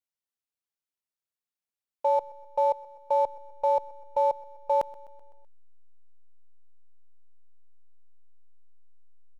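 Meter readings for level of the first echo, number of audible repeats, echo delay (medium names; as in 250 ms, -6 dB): -21.5 dB, 3, 127 ms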